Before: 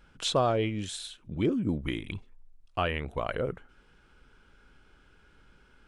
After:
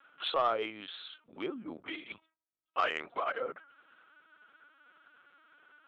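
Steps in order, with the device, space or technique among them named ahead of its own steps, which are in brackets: talking toy (LPC vocoder at 8 kHz pitch kept; high-pass 500 Hz 12 dB/octave; peaking EQ 1.3 kHz +8.5 dB 0.46 oct; saturation -16.5 dBFS, distortion -19 dB); trim -2 dB

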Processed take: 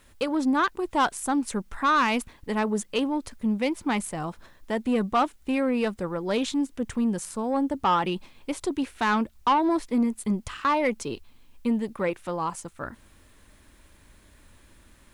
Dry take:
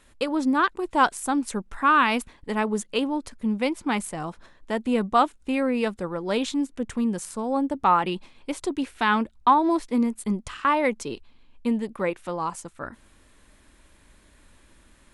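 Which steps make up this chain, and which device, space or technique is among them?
open-reel tape (saturation -15.5 dBFS, distortion -15 dB; peaking EQ 94 Hz +4.5 dB 1.14 oct; white noise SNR 44 dB)

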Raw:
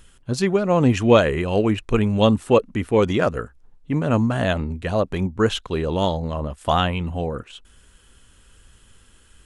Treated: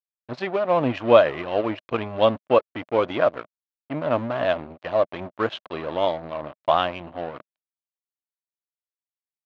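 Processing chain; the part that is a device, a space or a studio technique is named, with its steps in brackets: blown loudspeaker (crossover distortion -30 dBFS; cabinet simulation 180–4000 Hz, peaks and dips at 200 Hz -10 dB, 420 Hz -5 dB, 620 Hz +9 dB, 1.1 kHz +4 dB); trim -2 dB

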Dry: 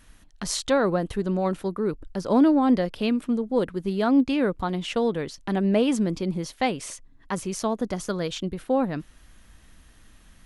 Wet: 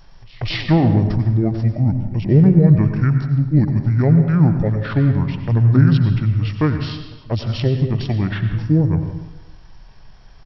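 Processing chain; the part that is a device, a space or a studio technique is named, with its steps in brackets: pre-echo 203 ms -23 dB; monster voice (pitch shift -9 st; formant shift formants -3 st; bass shelf 190 Hz +7 dB; reverberation RT60 1.1 s, pre-delay 83 ms, DRR 7 dB); trim +4.5 dB

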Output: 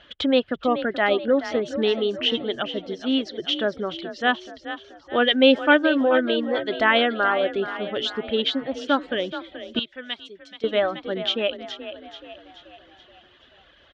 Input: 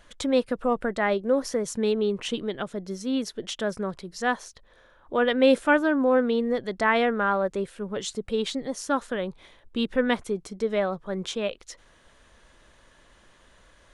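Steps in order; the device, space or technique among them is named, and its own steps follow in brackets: reverb removal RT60 0.98 s; frequency-shifting delay pedal into a guitar cabinet (frequency-shifting echo 429 ms, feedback 50%, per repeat +34 Hz, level -12 dB; cabinet simulation 79–4000 Hz, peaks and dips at 110 Hz -8 dB, 190 Hz -8 dB, 480 Hz -4 dB, 1 kHz -8 dB, 2.2 kHz -3 dB, 3.1 kHz +9 dB); 9.79–10.64 s: pre-emphasis filter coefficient 0.9; trim +6 dB

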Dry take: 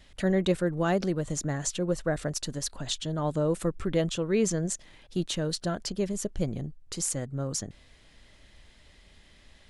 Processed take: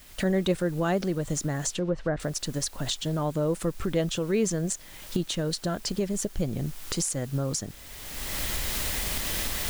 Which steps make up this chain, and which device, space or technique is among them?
cheap recorder with automatic gain (white noise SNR 24 dB; recorder AGC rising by 27 dB/s); 1.71–2.20 s: low-pass that closes with the level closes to 2 kHz, closed at -22.5 dBFS

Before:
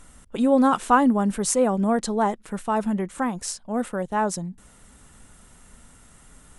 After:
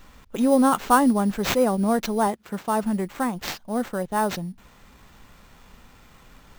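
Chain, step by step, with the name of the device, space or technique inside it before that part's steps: early companding sampler (sample-rate reducer 9.9 kHz, jitter 0%; companded quantiser 8-bit); 2.27–2.83 s: high-pass 70 Hz

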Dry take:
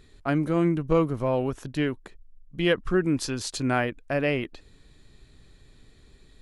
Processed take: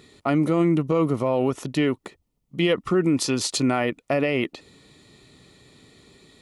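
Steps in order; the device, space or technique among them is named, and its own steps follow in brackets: PA system with an anti-feedback notch (high-pass 150 Hz 12 dB/octave; Butterworth band-stop 1.6 kHz, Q 5.8; peak limiter -20 dBFS, peak gain reduction 9.5 dB); trim +8 dB

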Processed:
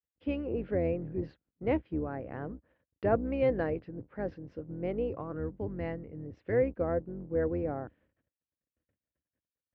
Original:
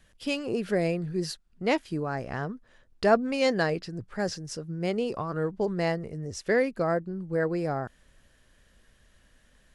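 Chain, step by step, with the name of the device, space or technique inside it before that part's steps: gate -55 dBFS, range -43 dB; sub-octave bass pedal (octave divider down 2 oct, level +2 dB; cabinet simulation 64–2400 Hz, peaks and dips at 300 Hz +8 dB, 510 Hz +7 dB, 1.2 kHz -3 dB, 1.7 kHz -3 dB); 5.34–6.53 s: dynamic bell 550 Hz, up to -6 dB, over -36 dBFS, Q 0.75; trim -8.5 dB

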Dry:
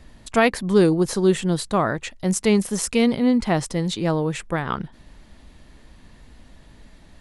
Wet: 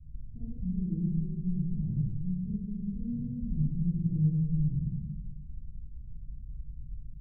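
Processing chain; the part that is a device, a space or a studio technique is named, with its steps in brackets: club heard from the street (peak limiter -16.5 dBFS, peak gain reduction 11 dB; low-pass 140 Hz 24 dB/octave; reverberation RT60 1.4 s, pre-delay 24 ms, DRR -7 dB); trim -2 dB

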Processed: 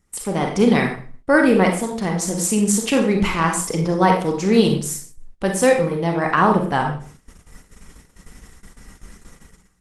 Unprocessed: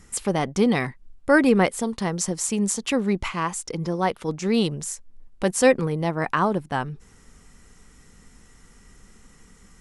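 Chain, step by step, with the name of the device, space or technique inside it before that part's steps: 2.93–3.46 s: de-hum 48.61 Hz, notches 27; speakerphone in a meeting room (reverberation RT60 0.45 s, pre-delay 33 ms, DRR 2 dB; level rider gain up to 9.5 dB; gate -38 dBFS, range -14 dB; trim -1 dB; Opus 20 kbps 48 kHz)

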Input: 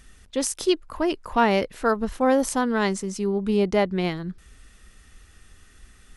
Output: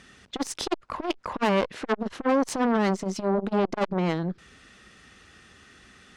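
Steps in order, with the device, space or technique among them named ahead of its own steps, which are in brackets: valve radio (band-pass 140–5200 Hz; valve stage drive 23 dB, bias 0.6; transformer saturation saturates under 640 Hz); trim +8.5 dB

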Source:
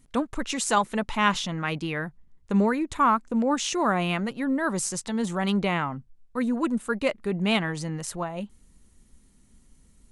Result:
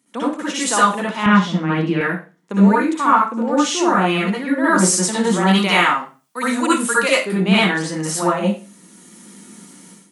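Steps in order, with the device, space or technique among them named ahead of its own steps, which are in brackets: high-pass 140 Hz 24 dB/octave; 5.51–7.25 s: tilt EQ +3.5 dB/octave; far laptop microphone (reverberation RT60 0.35 s, pre-delay 55 ms, DRR -7.5 dB; high-pass 200 Hz 12 dB/octave; level rider gain up to 16.5 dB); 1.26–2.01 s: RIAA curve playback; trim -1.5 dB

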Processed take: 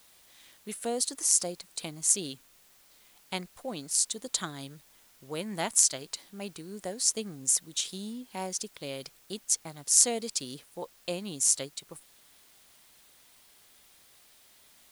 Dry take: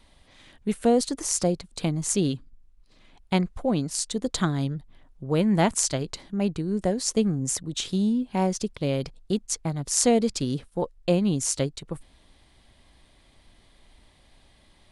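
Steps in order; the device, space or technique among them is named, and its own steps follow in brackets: turntable without a phono preamp (RIAA curve recording; white noise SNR 27 dB); trim -8.5 dB

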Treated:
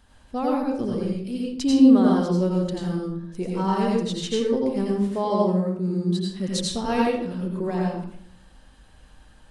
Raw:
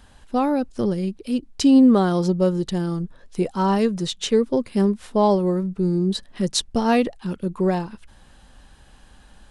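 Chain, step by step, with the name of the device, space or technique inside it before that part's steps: 4.92–6.30 s: high-pass 85 Hz; bathroom (reverberation RT60 0.65 s, pre-delay 81 ms, DRR -3 dB); trim -7.5 dB

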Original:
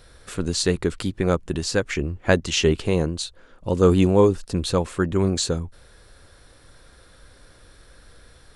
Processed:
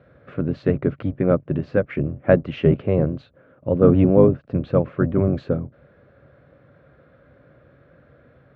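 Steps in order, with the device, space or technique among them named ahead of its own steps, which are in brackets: sub-octave bass pedal (octave divider, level -3 dB; cabinet simulation 75–2100 Hz, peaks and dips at 84 Hz -3 dB, 140 Hz +9 dB, 260 Hz +5 dB, 580 Hz +9 dB, 920 Hz -7 dB, 1.8 kHz -4 dB); trim -1 dB

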